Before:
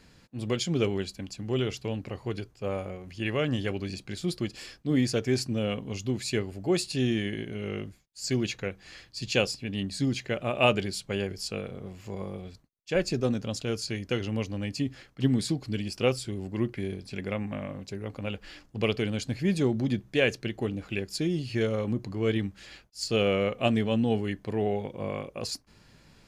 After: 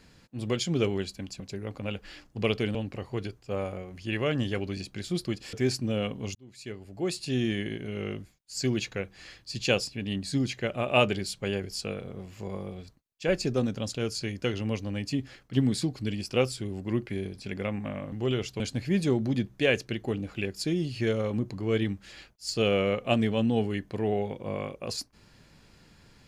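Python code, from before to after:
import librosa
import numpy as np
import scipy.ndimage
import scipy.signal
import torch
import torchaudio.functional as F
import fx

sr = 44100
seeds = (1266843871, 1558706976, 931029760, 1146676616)

y = fx.edit(x, sr, fx.swap(start_s=1.4, length_s=0.48, other_s=17.79, other_length_s=1.35),
    fx.cut(start_s=4.66, length_s=0.54),
    fx.fade_in_span(start_s=6.02, length_s=1.2), tone=tone)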